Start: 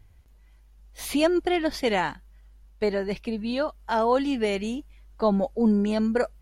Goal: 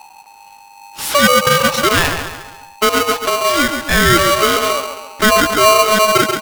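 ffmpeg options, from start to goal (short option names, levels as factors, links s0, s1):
-filter_complex "[0:a]asplit=2[s0][s1];[s1]adelay=135,lowpass=f=3300:p=1,volume=0.376,asplit=2[s2][s3];[s3]adelay=135,lowpass=f=3300:p=1,volume=0.46,asplit=2[s4][s5];[s5]adelay=135,lowpass=f=3300:p=1,volume=0.46,asplit=2[s6][s7];[s7]adelay=135,lowpass=f=3300:p=1,volume=0.46,asplit=2[s8][s9];[s9]adelay=135,lowpass=f=3300:p=1,volume=0.46[s10];[s0][s2][s4][s6][s8][s10]amix=inputs=6:normalize=0,asplit=2[s11][s12];[s12]alimiter=limit=0.112:level=0:latency=1:release=90,volume=1.12[s13];[s11][s13]amix=inputs=2:normalize=0,aeval=exprs='val(0)*sgn(sin(2*PI*860*n/s))':c=same,volume=2"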